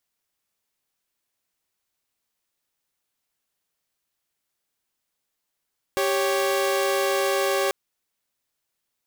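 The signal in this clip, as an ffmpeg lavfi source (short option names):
-f lavfi -i "aevalsrc='0.0891*((2*mod(392*t,1)-1)+(2*mod(554.37*t,1)-1))':d=1.74:s=44100"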